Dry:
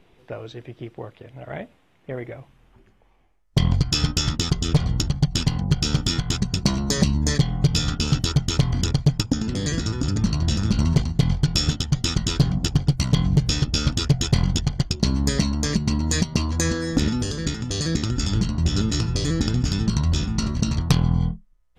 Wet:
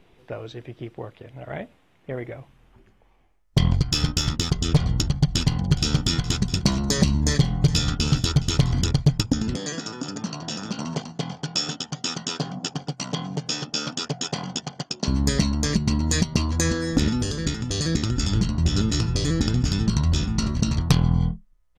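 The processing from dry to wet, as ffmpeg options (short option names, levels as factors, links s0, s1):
-filter_complex "[0:a]asettb=1/sr,asplit=3[s0][s1][s2];[s0]atrim=end=3.704[s3];[s1]atrim=start=3.7:end=4.6,asetpts=PTS-STARTPTS,afade=t=in:d=0.004:c=qsin,afade=t=out:st=0.896:d=0.004:c=qsin,aeval=exprs='if(lt(val(0),0),0.708*val(0),val(0))':c=same[s4];[s2]atrim=start=4.596[s5];[s3][s4]acrossfade=d=0.004:c1=hsin:c2=qsin[s6];[s6][s5]acrossfade=d=0.004:c1=qsin:c2=hsin,asplit=3[s7][s8][s9];[s7]afade=t=out:st=5.27:d=0.02[s10];[s8]aecho=1:1:416:0.133,afade=t=in:st=5.27:d=0.02,afade=t=out:st=8.85:d=0.02[s11];[s9]afade=t=in:st=8.85:d=0.02[s12];[s10][s11][s12]amix=inputs=3:normalize=0,asettb=1/sr,asplit=3[s13][s14][s15];[s13]atrim=end=9.564[s16];[s14]atrim=start=9.56:end=15.08,asetpts=PTS-STARTPTS,afade=t=in:d=0.004:c=qsin,afade=t=out:st=5.516:d=0.004:c=qsin,highpass=f=200:w=0.5412,highpass=f=200:w=1.3066,equalizer=f=210:t=q:w=4:g=-6,equalizer=f=340:t=q:w=4:g=-8,equalizer=f=760:t=q:w=4:g=4,equalizer=f=2100:t=q:w=4:g=-6,equalizer=f=4000:t=q:w=4:g=-6,lowpass=f=7400:w=0.5412,lowpass=f=7400:w=1.3066[s17];[s15]atrim=start=15.076[s18];[s16][s17]acrossfade=d=0.004:c1=hsin:c2=qsin[s19];[s19][s18]acrossfade=d=0.004:c1=qsin:c2=hsin"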